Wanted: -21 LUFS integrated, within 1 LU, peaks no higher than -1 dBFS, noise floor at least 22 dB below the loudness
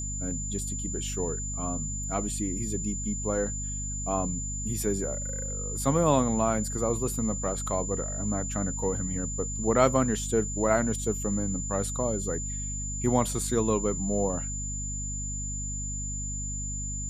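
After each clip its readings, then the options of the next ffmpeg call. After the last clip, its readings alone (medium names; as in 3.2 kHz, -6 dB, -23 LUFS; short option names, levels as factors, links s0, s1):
hum 50 Hz; highest harmonic 250 Hz; hum level -33 dBFS; steady tone 7.1 kHz; tone level -34 dBFS; loudness -29.0 LUFS; peak level -7.0 dBFS; loudness target -21.0 LUFS
-> -af "bandreject=f=50:t=h:w=4,bandreject=f=100:t=h:w=4,bandreject=f=150:t=h:w=4,bandreject=f=200:t=h:w=4,bandreject=f=250:t=h:w=4"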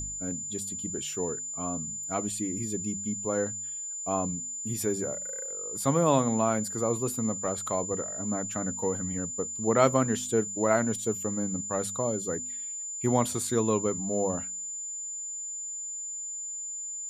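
hum not found; steady tone 7.1 kHz; tone level -34 dBFS
-> -af "bandreject=f=7100:w=30"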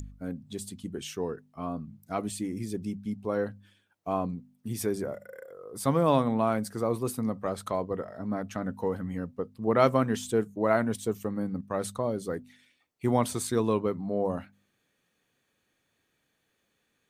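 steady tone not found; loudness -30.5 LUFS; peak level -7.5 dBFS; loudness target -21.0 LUFS
-> -af "volume=2.99,alimiter=limit=0.891:level=0:latency=1"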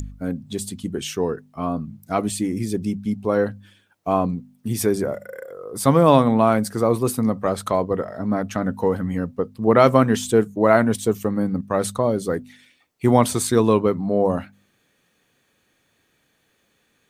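loudness -21.0 LUFS; peak level -1.0 dBFS; noise floor -66 dBFS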